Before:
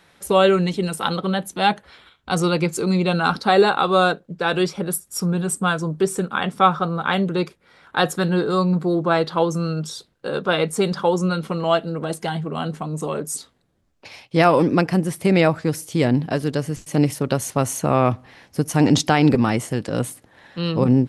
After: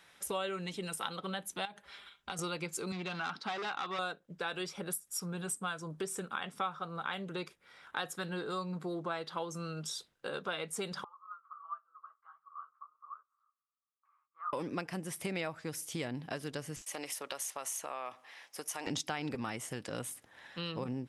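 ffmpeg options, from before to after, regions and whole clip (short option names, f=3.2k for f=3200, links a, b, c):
-filter_complex "[0:a]asettb=1/sr,asplit=3[a][b][c];[a]atrim=end=1.654[d];[b]atrim=start=1.65:end=2.39,asetpts=PTS-STARTPTS,afade=t=in:d=0.004:c=qsin,afade=t=out:st=0.736:d=0.004:c=qsin,aecho=1:1:5:0.48,atrim=end_sample=32634,acompressor=threshold=-25dB:ratio=20:attack=3.2:release=140:knee=1:detection=peak[e];[c]atrim=start=2.386[f];[d][e]acrossfade=d=0.004:c1=hsin:c2=qsin[g];[g][f]acrossfade=d=0.004:c1=qsin:c2=hsin,asettb=1/sr,asplit=3[h][i][j];[h]atrim=end=2.924[k];[i]atrim=start=2.92:end=3.99,asetpts=PTS-STARTPTS,afade=t=in:d=0.004:c=qsin,afade=t=out:st=1.066:d=0.004:c=qsin,volume=16dB,asoftclip=hard,volume=-16dB,highpass=150,lowpass=4.8k,equalizer=f=500:w=3.5:g=-8.5[l];[j]atrim=start=3.986[m];[k][l]acrossfade=d=0.004:c1=hsin:c2=qsin[n];[n][m]acrossfade=d=0.004:c1=qsin:c2=hsin,asettb=1/sr,asplit=3[o][p][q];[o]atrim=end=11.044[r];[p]atrim=start=11.04:end=14.53,asetpts=PTS-STARTPTS,afade=t=in:d=0.004:c=qsin,afade=t=out:st=3.486:d=0.004:c=qsin,asuperpass=centerf=1200:order=4:qfactor=7.2,flanger=delay=4.7:depth=9.1:regen=-29:speed=1.4:shape=sinusoidal[s];[q]atrim=start=14.526[t];[r][s]acrossfade=d=0.004:c1=hsin:c2=qsin[u];[u][t]acrossfade=d=0.004:c1=qsin:c2=hsin,asettb=1/sr,asplit=3[v][w][x];[v]atrim=end=16.824[y];[w]atrim=start=16.82:end=18.87,asetpts=PTS-STARTPTS,afade=t=in:d=0.004:c=qsin,afade=t=out:st=2.046:d=0.004:c=qsin,highpass=560,bandreject=f=1.5k:w=19,acompressor=threshold=-25dB:ratio=2.5:attack=3.2:release=140:knee=1:detection=peak[z];[x]atrim=start=18.866[aa];[y][z]acrossfade=d=0.004:c1=hsin:c2=qsin[ab];[ab][aa]acrossfade=d=0.004:c1=qsin:c2=hsin,tiltshelf=f=690:g=-5.5,bandreject=f=4.3k:w=13,acompressor=threshold=-28dB:ratio=3,volume=-9dB"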